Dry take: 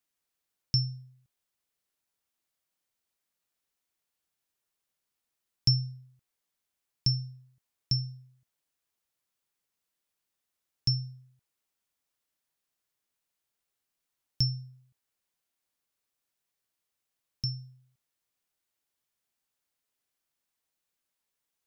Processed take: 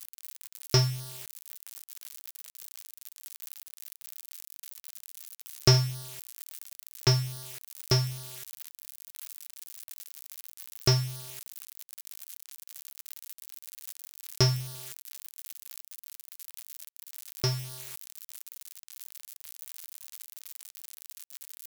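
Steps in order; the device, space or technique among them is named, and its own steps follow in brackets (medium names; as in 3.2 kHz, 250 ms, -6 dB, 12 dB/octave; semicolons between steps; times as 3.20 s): 5.74–7.07 s: dynamic bell 4.1 kHz, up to +4 dB, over -51 dBFS, Q 0.87; budget class-D amplifier (dead-time distortion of 0.2 ms; zero-crossing glitches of -24.5 dBFS); trim +6 dB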